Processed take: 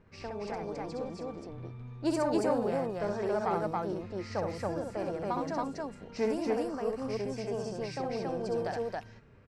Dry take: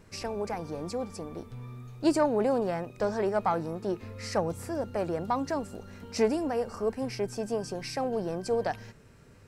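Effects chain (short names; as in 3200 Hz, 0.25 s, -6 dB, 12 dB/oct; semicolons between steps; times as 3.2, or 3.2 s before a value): low-pass opened by the level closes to 2400 Hz, open at -23.5 dBFS; on a send: loudspeakers at several distances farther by 22 m -4 dB, 95 m -1 dB; on the sum: gain -6 dB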